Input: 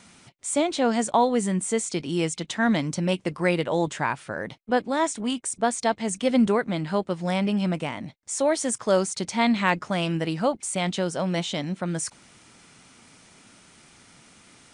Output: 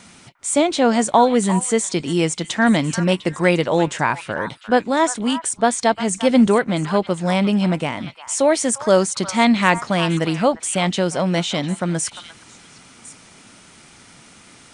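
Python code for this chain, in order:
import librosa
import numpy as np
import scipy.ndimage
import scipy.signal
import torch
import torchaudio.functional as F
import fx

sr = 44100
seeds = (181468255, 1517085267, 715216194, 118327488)

y = fx.echo_stepped(x, sr, ms=351, hz=1200.0, octaves=1.4, feedback_pct=70, wet_db=-9)
y = F.gain(torch.from_numpy(y), 6.5).numpy()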